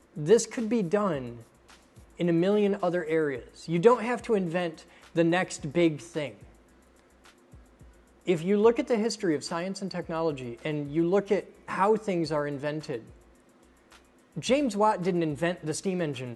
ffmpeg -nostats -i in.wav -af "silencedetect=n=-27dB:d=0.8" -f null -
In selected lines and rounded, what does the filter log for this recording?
silence_start: 1.26
silence_end: 2.20 | silence_duration: 0.94
silence_start: 6.27
silence_end: 8.28 | silence_duration: 2.01
silence_start: 12.96
silence_end: 14.38 | silence_duration: 1.42